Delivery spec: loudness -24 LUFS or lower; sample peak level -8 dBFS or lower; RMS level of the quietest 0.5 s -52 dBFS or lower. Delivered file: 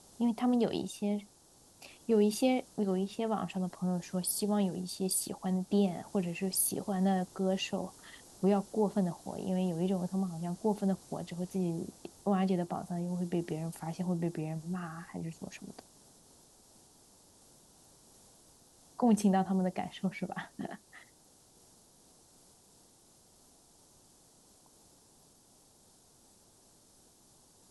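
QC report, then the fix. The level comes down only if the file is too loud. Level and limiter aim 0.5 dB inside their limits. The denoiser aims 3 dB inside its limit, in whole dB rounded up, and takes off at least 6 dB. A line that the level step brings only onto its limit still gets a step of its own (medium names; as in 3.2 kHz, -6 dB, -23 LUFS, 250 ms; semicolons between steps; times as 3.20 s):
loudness -33.5 LUFS: pass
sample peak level -16.5 dBFS: pass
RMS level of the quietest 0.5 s -63 dBFS: pass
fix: none needed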